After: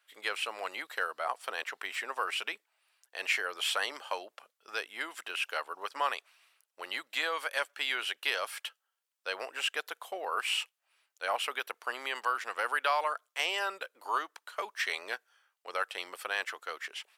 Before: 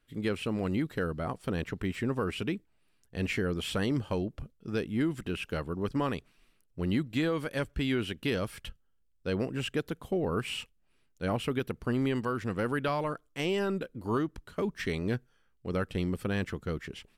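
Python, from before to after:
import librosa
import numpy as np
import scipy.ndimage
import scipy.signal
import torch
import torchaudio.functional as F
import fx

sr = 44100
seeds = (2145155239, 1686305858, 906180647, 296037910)

y = scipy.signal.sosfilt(scipy.signal.butter(4, 710.0, 'highpass', fs=sr, output='sos'), x)
y = y * librosa.db_to_amplitude(5.5)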